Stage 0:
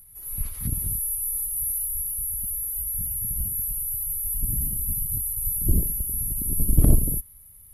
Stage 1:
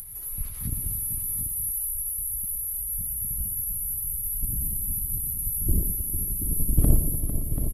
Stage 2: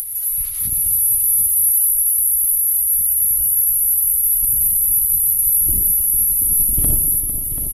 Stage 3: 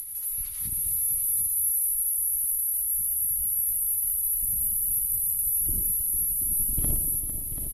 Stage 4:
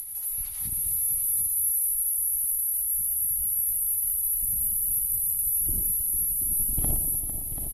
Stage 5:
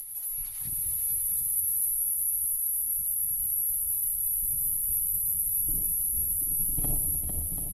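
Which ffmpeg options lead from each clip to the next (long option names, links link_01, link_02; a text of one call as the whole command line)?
ffmpeg -i in.wav -filter_complex "[0:a]acompressor=mode=upward:threshold=-26dB:ratio=2.5,asplit=2[link_01][link_02];[link_02]aecho=0:1:116|303|451|569|736:0.299|0.133|0.299|0.126|0.376[link_03];[link_01][link_03]amix=inputs=2:normalize=0,volume=-3dB" out.wav
ffmpeg -i in.wav -af "tiltshelf=frequency=1400:gain=-9,volume=5.5dB" out.wav
ffmpeg -i in.wav -af "lowpass=12000,volume=-8dB" out.wav
ffmpeg -i in.wav -af "equalizer=frequency=780:width=3.5:gain=11" out.wav
ffmpeg -i in.wav -filter_complex "[0:a]aecho=1:1:7:0.65,asplit=2[link_01][link_02];[link_02]asplit=4[link_03][link_04][link_05][link_06];[link_03]adelay=448,afreqshift=-98,volume=-6dB[link_07];[link_04]adelay=896,afreqshift=-196,volume=-16.2dB[link_08];[link_05]adelay=1344,afreqshift=-294,volume=-26.3dB[link_09];[link_06]adelay=1792,afreqshift=-392,volume=-36.5dB[link_10];[link_07][link_08][link_09][link_10]amix=inputs=4:normalize=0[link_11];[link_01][link_11]amix=inputs=2:normalize=0,volume=-4.5dB" out.wav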